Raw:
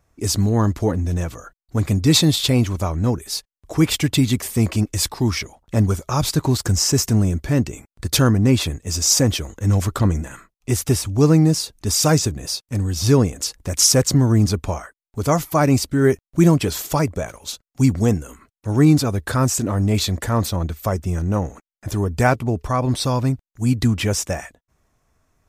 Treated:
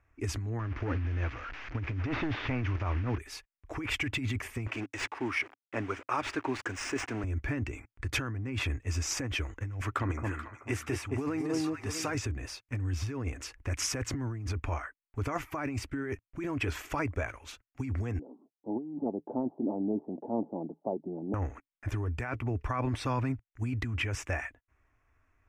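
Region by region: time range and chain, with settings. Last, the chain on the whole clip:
0.59–3.18 s: one-bit delta coder 32 kbps, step -30 dBFS + treble shelf 4.1 kHz -5.5 dB + hard clipper -13.5 dBFS
4.67–7.24 s: send-on-delta sampling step -37.5 dBFS + high-pass 310 Hz + decimation joined by straight lines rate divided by 3×
9.81–12.15 s: high-pass 240 Hz 6 dB/octave + echo whose repeats swap between lows and highs 217 ms, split 1 kHz, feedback 53%, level -4.5 dB
18.19–21.34 s: Chebyshev band-pass 160–870 Hz, order 5 + tilt EQ -2 dB/octave
whole clip: FFT filter 110 Hz 0 dB, 170 Hz -18 dB, 280 Hz -1 dB, 530 Hz -7 dB, 1.7 kHz +4 dB, 2.5 kHz +4 dB, 4 kHz -15 dB, 5.9 kHz -13 dB, 13 kHz -20 dB; compressor with a negative ratio -24 dBFS, ratio -1; trim -7.5 dB

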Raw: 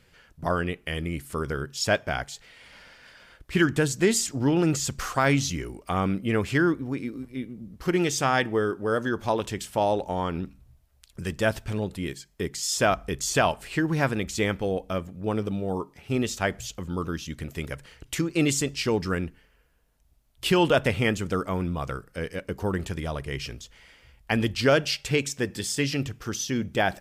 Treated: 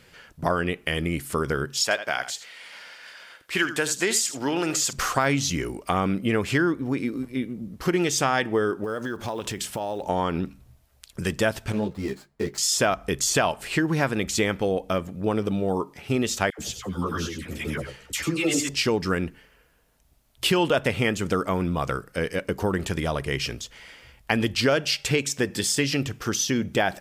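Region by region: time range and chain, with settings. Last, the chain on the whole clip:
1.83–4.93 s: high-pass 830 Hz 6 dB/octave + delay 79 ms -13.5 dB
8.84–10.06 s: block-companded coder 7-bit + compression 12:1, threshold -32 dBFS
11.72–12.58 s: median filter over 15 samples + doubling 20 ms -14 dB + three-phase chorus
16.50–18.69 s: phase dispersion lows, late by 86 ms, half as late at 1.1 kHz + delay 95 ms -8 dB + three-phase chorus
whole clip: bass shelf 94 Hz -9.5 dB; compression 2.5:1, threshold -29 dBFS; trim +7.5 dB

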